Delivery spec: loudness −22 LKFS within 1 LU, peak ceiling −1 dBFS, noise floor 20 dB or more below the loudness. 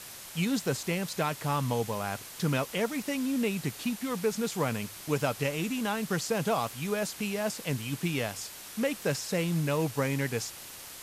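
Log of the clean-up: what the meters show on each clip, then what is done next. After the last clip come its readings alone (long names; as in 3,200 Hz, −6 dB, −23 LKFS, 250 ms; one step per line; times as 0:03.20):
background noise floor −45 dBFS; target noise floor −51 dBFS; integrated loudness −31.0 LKFS; sample peak −15.0 dBFS; target loudness −22.0 LKFS
→ broadband denoise 6 dB, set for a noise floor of −45 dBFS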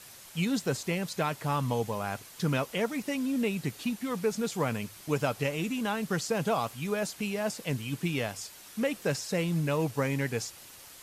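background noise floor −50 dBFS; target noise floor −52 dBFS
→ broadband denoise 6 dB, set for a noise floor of −50 dBFS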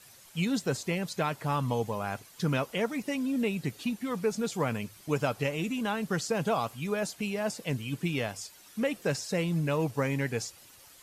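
background noise floor −55 dBFS; integrated loudness −31.5 LKFS; sample peak −15.0 dBFS; target loudness −22.0 LKFS
→ level +9.5 dB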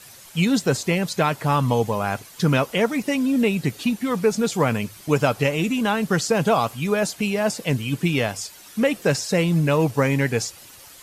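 integrated loudness −22.0 LKFS; sample peak −5.5 dBFS; background noise floor −45 dBFS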